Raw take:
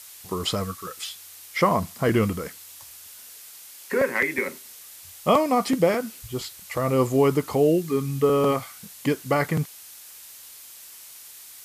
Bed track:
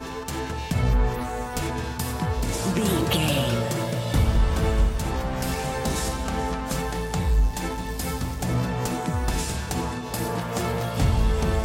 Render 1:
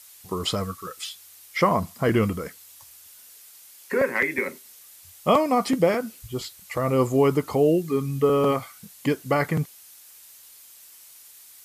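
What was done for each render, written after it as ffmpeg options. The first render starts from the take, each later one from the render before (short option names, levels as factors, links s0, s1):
-af "afftdn=nr=6:nf=-45"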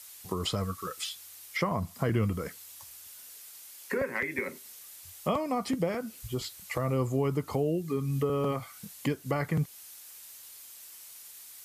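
-filter_complex "[0:a]acrossover=split=140[s0][s1];[s1]acompressor=threshold=0.0251:ratio=2.5[s2];[s0][s2]amix=inputs=2:normalize=0"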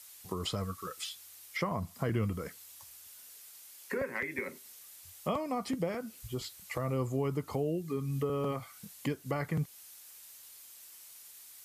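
-af "volume=0.631"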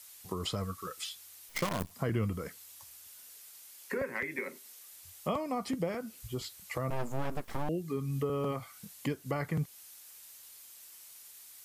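-filter_complex "[0:a]asettb=1/sr,asplit=3[s0][s1][s2];[s0]atrim=end=1.494[s3];[s1]atrim=start=1.49:end=1.91,asetpts=PTS-STARTPTS,afade=t=in:d=0.004:c=qsin,afade=t=out:st=0.416:d=0.004:c=qsin,acrusher=bits=6:dc=4:mix=0:aa=0.000001[s4];[s2]atrim=start=1.906[s5];[s3][s4]acrossfade=d=0.004:c1=hsin:c2=qsin[s6];[s6][s5]acrossfade=d=0.004:c1=qsin:c2=hsin,asettb=1/sr,asplit=3[s7][s8][s9];[s7]atrim=end=4.364[s10];[s8]atrim=start=4.36:end=4.92,asetpts=PTS-STARTPTS,afade=t=in:d=0.004:c=qsin,afade=t=out:st=0.556:d=0.004:c=qsin,highpass=210[s11];[s9]atrim=start=4.916[s12];[s10][s11]acrossfade=d=0.004:c1=hsin:c2=qsin[s13];[s13][s12]acrossfade=d=0.004:c1=qsin:c2=hsin,asettb=1/sr,asplit=3[s14][s15][s16];[s14]atrim=end=6.904[s17];[s15]atrim=start=6.9:end=7.69,asetpts=PTS-STARTPTS,afade=t=in:d=0.004:c=qsin,afade=t=out:st=0.786:d=0.004:c=qsin,aeval=exprs='abs(val(0))':c=same[s18];[s16]atrim=start=7.686[s19];[s17][s18]acrossfade=d=0.004:c1=hsin:c2=qsin[s20];[s20][s19]acrossfade=d=0.004:c1=qsin:c2=hsin"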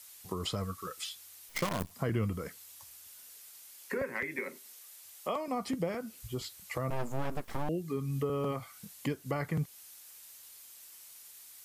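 -filter_complex "[0:a]asettb=1/sr,asplit=3[s0][s1][s2];[s0]atrim=end=4.794[s3];[s1]atrim=start=4.79:end=5.48,asetpts=PTS-STARTPTS,afade=t=in:d=0.004:c=qsin,afade=t=out:st=0.686:d=0.004:c=qsin,highpass=350[s4];[s2]atrim=start=5.476[s5];[s3][s4]acrossfade=d=0.004:c1=hsin:c2=qsin[s6];[s6][s5]acrossfade=d=0.004:c1=qsin:c2=hsin"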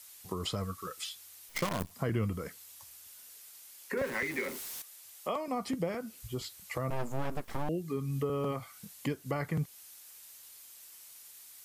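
-filter_complex "[0:a]asettb=1/sr,asplit=3[s0][s1][s2];[s0]atrim=end=3.974[s3];[s1]atrim=start=3.97:end=4.82,asetpts=PTS-STARTPTS,afade=t=in:d=0.004:c=qsin,afade=t=out:st=0.846:d=0.004:c=qsin,aeval=exprs='val(0)+0.5*0.0119*sgn(val(0))':c=same[s4];[s2]atrim=start=4.816[s5];[s3][s4]acrossfade=d=0.004:c1=hsin:c2=qsin[s6];[s6][s5]acrossfade=d=0.004:c1=qsin:c2=hsin"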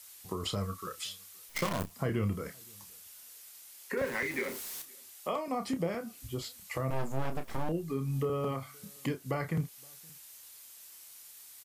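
-filter_complex "[0:a]asplit=2[s0][s1];[s1]adelay=30,volume=0.355[s2];[s0][s2]amix=inputs=2:normalize=0,asplit=2[s3][s4];[s4]adelay=519,volume=0.0355,highshelf=f=4000:g=-11.7[s5];[s3][s5]amix=inputs=2:normalize=0"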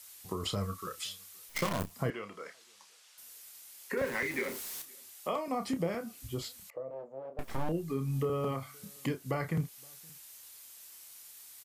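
-filter_complex "[0:a]asettb=1/sr,asplit=3[s0][s1][s2];[s0]atrim=end=2.104[s3];[s1]atrim=start=2.1:end=3.18,asetpts=PTS-STARTPTS,afade=t=in:d=0.004:c=qsin,afade=t=out:st=1.076:d=0.004:c=qsin,highpass=570,lowpass=5700[s4];[s2]atrim=start=3.176[s5];[s3][s4]acrossfade=d=0.004:c1=hsin:c2=qsin[s6];[s6][s5]acrossfade=d=0.004:c1=qsin:c2=hsin,asettb=1/sr,asplit=3[s7][s8][s9];[s7]atrim=end=6.704[s10];[s8]atrim=start=6.7:end=7.39,asetpts=PTS-STARTPTS,afade=t=in:d=0.004:c=qsin,afade=t=out:st=0.686:d=0.004:c=qsin,bandpass=f=530:t=q:w=4.6[s11];[s9]atrim=start=7.386[s12];[s10][s11]acrossfade=d=0.004:c1=hsin:c2=qsin[s13];[s13][s12]acrossfade=d=0.004:c1=qsin:c2=hsin"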